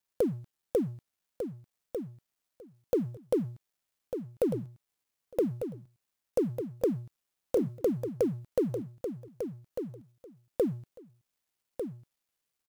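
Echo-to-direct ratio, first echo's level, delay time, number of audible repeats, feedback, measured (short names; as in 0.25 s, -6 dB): -8.0 dB, -8.0 dB, 1.198 s, 2, 15%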